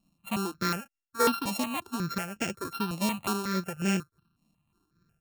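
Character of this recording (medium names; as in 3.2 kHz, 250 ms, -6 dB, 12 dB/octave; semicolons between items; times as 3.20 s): a buzz of ramps at a fixed pitch in blocks of 32 samples; tremolo triangle 3.4 Hz, depth 60%; notches that jump at a steady rate 5.5 Hz 400–4000 Hz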